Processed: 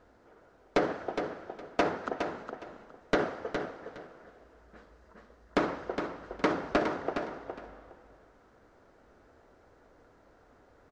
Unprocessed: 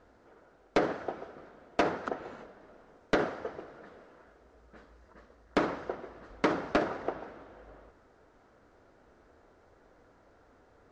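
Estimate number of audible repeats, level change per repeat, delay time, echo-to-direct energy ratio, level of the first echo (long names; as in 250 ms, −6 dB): 2, −14.0 dB, 413 ms, −7.0 dB, −7.0 dB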